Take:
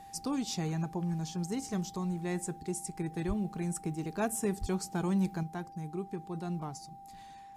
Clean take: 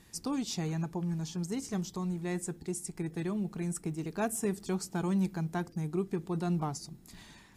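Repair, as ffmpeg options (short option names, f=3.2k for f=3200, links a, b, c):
-filter_complex "[0:a]bandreject=f=790:w=30,asplit=3[a][b][c];[a]afade=t=out:st=3.27:d=0.02[d];[b]highpass=f=140:w=0.5412,highpass=f=140:w=1.3066,afade=t=in:st=3.27:d=0.02,afade=t=out:st=3.39:d=0.02[e];[c]afade=t=in:st=3.39:d=0.02[f];[d][e][f]amix=inputs=3:normalize=0,asplit=3[g][h][i];[g]afade=t=out:st=4.6:d=0.02[j];[h]highpass=f=140:w=0.5412,highpass=f=140:w=1.3066,afade=t=in:st=4.6:d=0.02,afade=t=out:st=4.72:d=0.02[k];[i]afade=t=in:st=4.72:d=0.02[l];[j][k][l]amix=inputs=3:normalize=0,asetnsamples=n=441:p=0,asendcmd='5.43 volume volume 5.5dB',volume=0dB"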